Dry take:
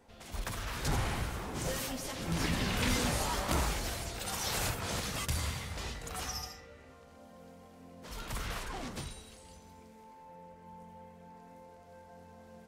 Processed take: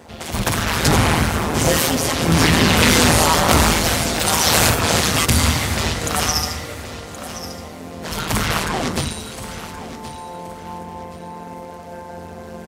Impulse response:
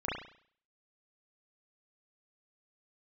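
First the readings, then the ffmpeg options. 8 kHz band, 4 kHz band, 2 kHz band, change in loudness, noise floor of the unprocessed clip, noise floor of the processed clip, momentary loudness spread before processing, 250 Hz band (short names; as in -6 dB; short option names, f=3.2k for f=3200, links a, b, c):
+19.0 dB, +19.0 dB, +19.0 dB, +18.5 dB, -55 dBFS, -35 dBFS, 22 LU, +19.0 dB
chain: -filter_complex "[0:a]apsyclip=26.5dB,tremolo=f=160:d=0.824,highpass=66,asplit=2[a][b];[b]aecho=0:1:1074|2148|3222:0.211|0.0613|0.0178[c];[a][c]amix=inputs=2:normalize=0,volume=-3.5dB"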